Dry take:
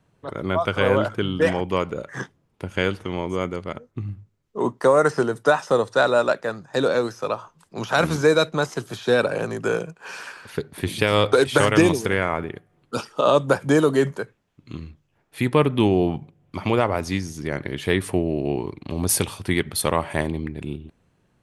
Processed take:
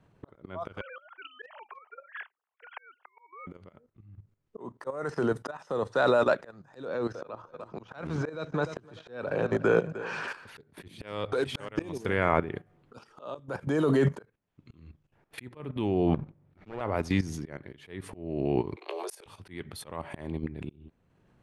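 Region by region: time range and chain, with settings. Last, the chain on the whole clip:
0.81–3.47 sine-wave speech + HPF 830 Hz 24 dB/oct + overloaded stage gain 21.5 dB
6.85–10.28 LPF 10000 Hz 24 dB/oct + high shelf 5800 Hz -11.5 dB + feedback echo 0.298 s, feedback 30%, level -17.5 dB
11.03–11.69 notches 50/100/150 Hz + compressor 2:1, threshold -24 dBFS
16.14–16.81 minimum comb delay 0.51 ms + high shelf 3000 Hz -9 dB
18.76–19.26 steep high-pass 370 Hz 72 dB/oct + doubler 19 ms -8 dB
whole clip: high shelf 4500 Hz -11 dB; level quantiser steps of 14 dB; auto swell 0.647 s; gain +6.5 dB

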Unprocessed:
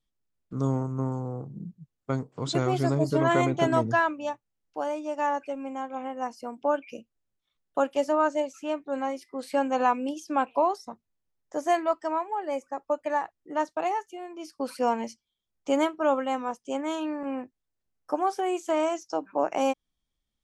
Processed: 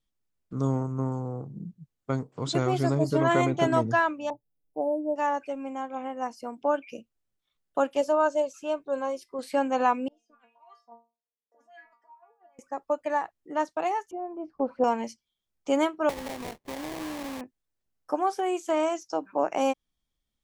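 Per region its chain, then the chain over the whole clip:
4.3–5.16 inverse Chebyshev band-stop 1300–6900 Hz + comb 6.8 ms
8.01–9.39 bell 2000 Hz -12.5 dB 0.33 oct + comb 1.9 ms, depth 41%
10.08–12.59 auto-wah 450–2200 Hz, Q 2.4, up, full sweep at -19 dBFS + negative-ratio compressor -43 dBFS + metallic resonator 230 Hz, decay 0.3 s, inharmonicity 0.002
14.11–14.84 synth low-pass 800 Hz, resonance Q 1.8 + low shelf 180 Hz +6.5 dB + upward compressor, threshold -39 dBFS
16.09–17.41 sample-rate reducer 1400 Hz, jitter 20% + compressor 12:1, threshold -31 dBFS
whole clip: dry

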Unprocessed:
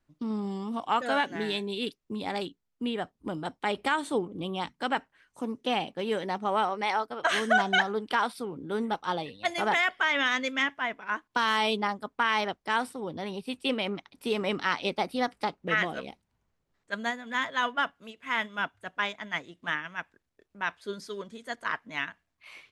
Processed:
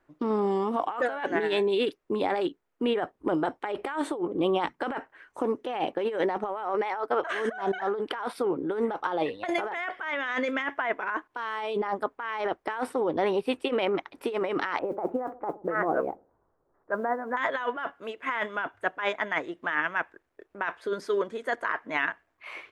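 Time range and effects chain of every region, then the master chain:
14.79–17.37 LPF 1300 Hz 24 dB/oct + modulation noise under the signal 34 dB + dark delay 63 ms, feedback 40%, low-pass 450 Hz, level -19.5 dB
whole clip: EQ curve 220 Hz 0 dB, 340 Hz +13 dB, 1700 Hz +11 dB, 4300 Hz -2 dB; negative-ratio compressor -24 dBFS, ratio -1; gain -4.5 dB

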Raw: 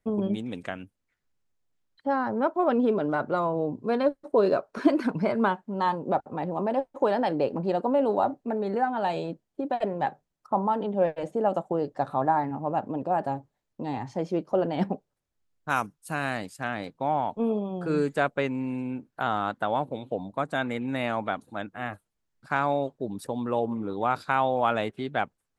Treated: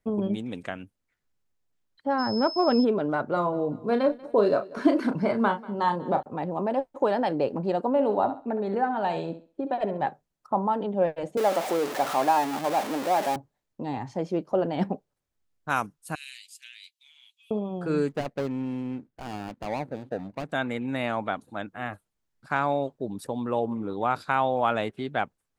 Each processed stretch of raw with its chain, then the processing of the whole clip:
2.18–2.83 low shelf 230 Hz +6.5 dB + whine 5200 Hz -34 dBFS
3.33–6.23 notch 2500 Hz, Q 16 + doubler 34 ms -8 dB + feedback echo 0.189 s, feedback 46%, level -21 dB
7.89–10.08 high shelf 6400 Hz -8.5 dB + thinning echo 67 ms, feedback 29%, high-pass 220 Hz, level -10.5 dB
11.37–13.36 zero-crossing step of -26 dBFS + HPF 320 Hz
16.15–17.51 steep high-pass 2600 Hz + comb 7.1 ms, depth 35%
18.09–20.52 median filter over 41 samples + high shelf 8600 Hz -5 dB
whole clip: dry

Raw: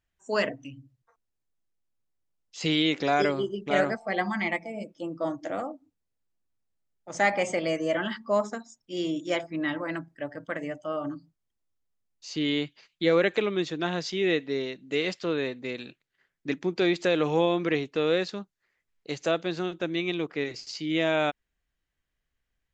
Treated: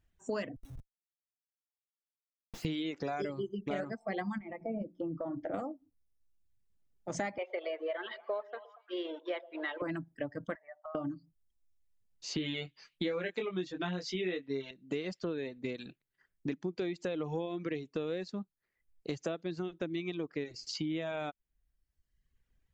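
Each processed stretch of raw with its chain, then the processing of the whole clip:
0.56–2.65 low shelf 220 Hz -10 dB + Schmitt trigger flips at -48 dBFS
4.38–5.54 notches 60/120/180/240/300/360 Hz + compressor 12:1, threshold -32 dBFS + LPF 1400 Hz
7.38–9.82 G.711 law mismatch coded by A + Chebyshev band-pass 390–4000 Hz, order 4 + delay with a stepping band-pass 0.116 s, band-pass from 540 Hz, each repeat 0.7 oct, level -11 dB
10.55–10.95 elliptic band-pass 660–1900 Hz + compressor 8:1, threshold -43 dBFS
12.36–14.71 bell 2200 Hz +6 dB 2.6 oct + doubler 22 ms -3.5 dB
whole clip: reverb removal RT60 0.93 s; low shelf 470 Hz +10 dB; compressor 6:1, threshold -34 dBFS

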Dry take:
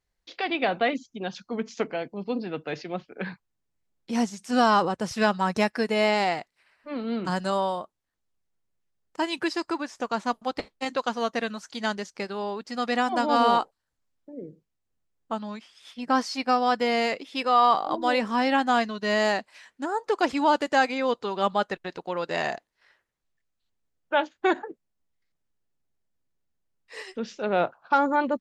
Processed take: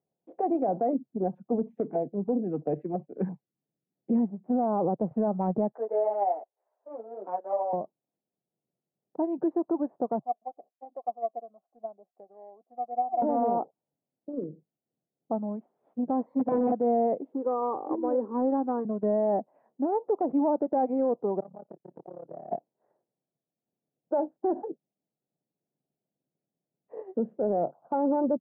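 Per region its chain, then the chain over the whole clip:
1.62–4.28 LFO notch saw down 3 Hz 470–2000 Hz + band shelf 3600 Hz +8.5 dB 2.4 oct
5.72–7.73 HPF 490 Hz 24 dB/oct + ensemble effect
10.19–13.22 vowel filter a + bell 3300 Hz -7.5 dB 2.8 oct + upward expander, over -43 dBFS
16.26–16.72 ripple EQ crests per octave 1, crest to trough 15 dB + wrapped overs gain 16 dB
17.32–18.85 block floating point 5-bit + fixed phaser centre 680 Hz, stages 6
21.4–22.52 compressor 3:1, threshold -37 dBFS + AM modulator 35 Hz, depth 95% + core saturation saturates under 2800 Hz
whole clip: elliptic band-pass 140–730 Hz, stop band 70 dB; transient shaper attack +4 dB, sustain 0 dB; limiter -22.5 dBFS; gain +4 dB

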